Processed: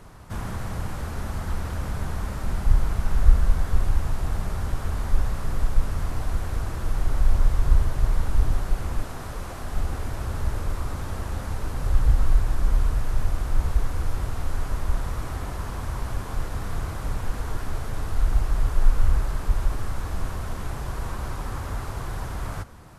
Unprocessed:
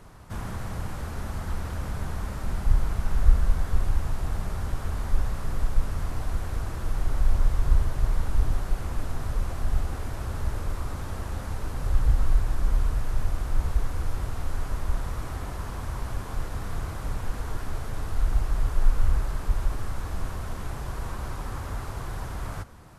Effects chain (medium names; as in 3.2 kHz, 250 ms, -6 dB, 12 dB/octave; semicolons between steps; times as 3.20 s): 9.02–9.77 s: bass shelf 120 Hz -11.5 dB; trim +2.5 dB